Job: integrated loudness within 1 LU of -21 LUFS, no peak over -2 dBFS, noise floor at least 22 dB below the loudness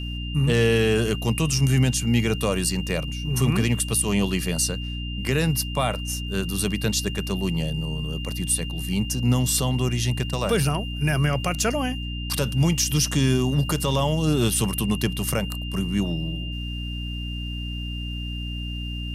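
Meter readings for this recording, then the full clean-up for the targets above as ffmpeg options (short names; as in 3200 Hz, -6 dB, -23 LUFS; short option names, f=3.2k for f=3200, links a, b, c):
hum 60 Hz; harmonics up to 300 Hz; hum level -28 dBFS; steady tone 2800 Hz; tone level -35 dBFS; loudness -24.0 LUFS; peak -9.5 dBFS; loudness target -21.0 LUFS
-> -af "bandreject=f=60:t=h:w=6,bandreject=f=120:t=h:w=6,bandreject=f=180:t=h:w=6,bandreject=f=240:t=h:w=6,bandreject=f=300:t=h:w=6"
-af "bandreject=f=2.8k:w=30"
-af "volume=3dB"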